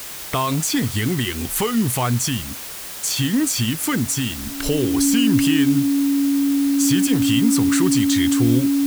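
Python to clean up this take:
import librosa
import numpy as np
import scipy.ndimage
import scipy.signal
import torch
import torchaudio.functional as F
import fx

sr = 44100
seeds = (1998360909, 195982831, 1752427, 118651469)

y = fx.notch(x, sr, hz=280.0, q=30.0)
y = fx.noise_reduce(y, sr, print_start_s=2.53, print_end_s=3.03, reduce_db=30.0)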